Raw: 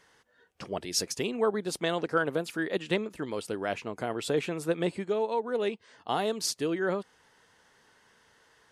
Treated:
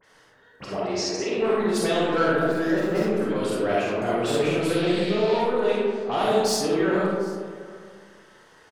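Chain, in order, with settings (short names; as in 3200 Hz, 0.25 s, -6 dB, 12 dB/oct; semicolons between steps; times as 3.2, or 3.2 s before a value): 2.38–3.08 median filter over 15 samples; dispersion highs, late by 42 ms, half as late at 2800 Hz; 4.6–5.37 band noise 2100–4500 Hz -44 dBFS; soft clip -25 dBFS, distortion -14 dB; 0.77–1.38 speaker cabinet 320–6200 Hz, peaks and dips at 370 Hz +4 dB, 1200 Hz -4 dB, 3400 Hz -9 dB; echo 0.746 s -22.5 dB; digital reverb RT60 1.8 s, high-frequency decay 0.35×, pre-delay 5 ms, DRR -6.5 dB; gain +2 dB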